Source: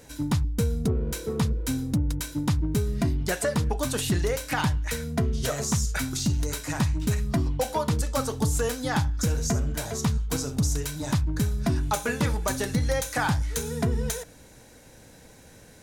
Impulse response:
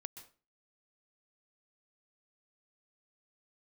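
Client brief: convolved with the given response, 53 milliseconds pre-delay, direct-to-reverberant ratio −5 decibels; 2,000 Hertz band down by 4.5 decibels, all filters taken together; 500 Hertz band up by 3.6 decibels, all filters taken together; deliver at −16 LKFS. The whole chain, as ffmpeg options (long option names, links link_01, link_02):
-filter_complex "[0:a]equalizer=frequency=500:width_type=o:gain=4.5,equalizer=frequency=2000:width_type=o:gain=-6.5,asplit=2[link_01][link_02];[1:a]atrim=start_sample=2205,adelay=53[link_03];[link_02][link_03]afir=irnorm=-1:irlink=0,volume=9.5dB[link_04];[link_01][link_04]amix=inputs=2:normalize=0,volume=4dB"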